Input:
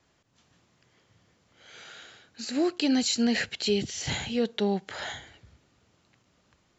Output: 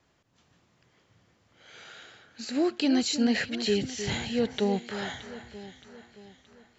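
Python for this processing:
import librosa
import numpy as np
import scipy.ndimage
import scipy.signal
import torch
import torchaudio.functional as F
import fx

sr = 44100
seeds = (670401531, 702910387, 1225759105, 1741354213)

p1 = fx.high_shelf(x, sr, hz=5000.0, db=-5.0)
y = p1 + fx.echo_alternate(p1, sr, ms=311, hz=1900.0, feedback_pct=67, wet_db=-10.5, dry=0)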